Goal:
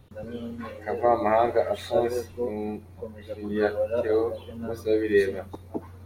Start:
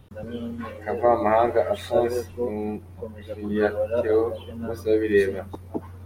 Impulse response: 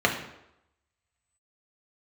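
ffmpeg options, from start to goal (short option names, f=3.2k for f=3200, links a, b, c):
-filter_complex "[0:a]asplit=2[a][b];[b]highshelf=f=2.4k:t=q:w=3:g=12[c];[1:a]atrim=start_sample=2205,atrim=end_sample=3528[d];[c][d]afir=irnorm=-1:irlink=0,volume=-29dB[e];[a][e]amix=inputs=2:normalize=0,volume=-3dB"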